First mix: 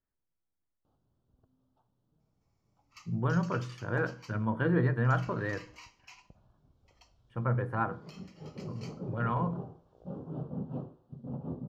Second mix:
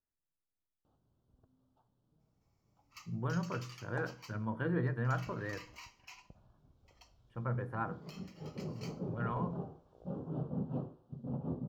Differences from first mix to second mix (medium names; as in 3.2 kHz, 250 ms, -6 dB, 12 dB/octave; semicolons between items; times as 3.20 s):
speech -6.5 dB; master: remove low-pass 9.8 kHz 12 dB/octave